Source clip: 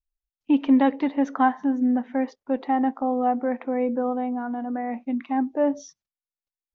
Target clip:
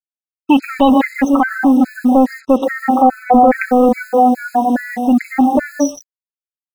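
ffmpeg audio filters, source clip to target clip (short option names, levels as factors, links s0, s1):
-filter_complex "[0:a]aecho=1:1:122.4|154.5:0.282|0.355,acrossover=split=670[s0][s1];[s0]volume=14.1,asoftclip=hard,volume=0.0708[s2];[s1]aecho=1:1:5.3:0.93[s3];[s2][s3]amix=inputs=2:normalize=0,asettb=1/sr,asplit=3[s4][s5][s6];[s4]atrim=end=3.014[s7];[s5]atrim=start=3.01:end=3.66,asetpts=PTS-STARTPTS,afade=t=in:d=0.004:c=qsin,afade=t=out:st=0.646:d=0.004:c=qsin,acontrast=70[s8];[s6]atrim=start=3.656[s9];[s7][s8]acrossfade=d=0.004:c1=hsin:c2=qsin[s10];[s10][s9]acrossfade=d=0.004:c1=qsin:c2=hsin,afftdn=nr=14:nf=-40,acrusher=bits=7:mix=0:aa=0.5,alimiter=level_in=7.08:limit=0.891:release=50:level=0:latency=1,afftfilt=real='re*gt(sin(2*PI*2.4*pts/sr)*(1-2*mod(floor(b*sr/1024/1300),2)),0)':imag='im*gt(sin(2*PI*2.4*pts/sr)*(1-2*mod(floor(b*sr/1024/1300),2)),0)':win_size=1024:overlap=0.75,volume=0.891"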